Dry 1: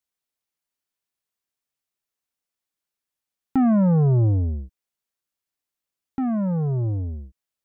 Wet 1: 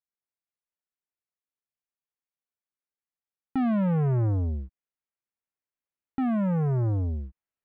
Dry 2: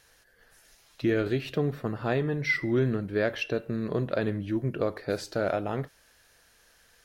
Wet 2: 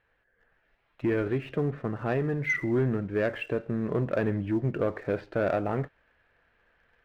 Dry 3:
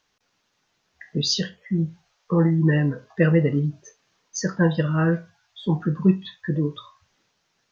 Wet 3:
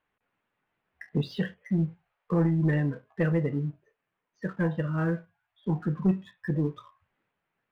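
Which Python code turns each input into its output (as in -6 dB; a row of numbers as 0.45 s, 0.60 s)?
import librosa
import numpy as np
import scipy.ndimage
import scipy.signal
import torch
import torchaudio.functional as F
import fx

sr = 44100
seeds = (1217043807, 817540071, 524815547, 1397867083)

y = scipy.signal.sosfilt(scipy.signal.butter(4, 2500.0, 'lowpass', fs=sr, output='sos'), x)
y = fx.rider(y, sr, range_db=4, speed_s=2.0)
y = fx.leveller(y, sr, passes=1)
y = y * 10.0 ** (-30 / 20.0) / np.sqrt(np.mean(np.square(y)))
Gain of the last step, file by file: -4.5 dB, -2.5 dB, -8.5 dB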